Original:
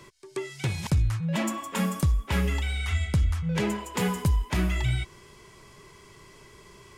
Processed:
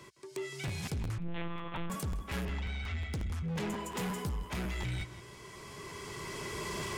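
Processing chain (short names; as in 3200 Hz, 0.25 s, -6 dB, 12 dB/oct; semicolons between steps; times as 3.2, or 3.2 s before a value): recorder AGC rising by 11 dB/s; HPF 65 Hz 6 dB/oct; soft clip -29.5 dBFS, distortion -9 dB; 2.45–3.13 air absorption 130 m; tape echo 0.162 s, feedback 58%, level -9 dB, low-pass 2300 Hz; 1.18–1.9 monotone LPC vocoder at 8 kHz 170 Hz; crackling interface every 0.18 s, samples 512, repeat, from 0.67; gain -3 dB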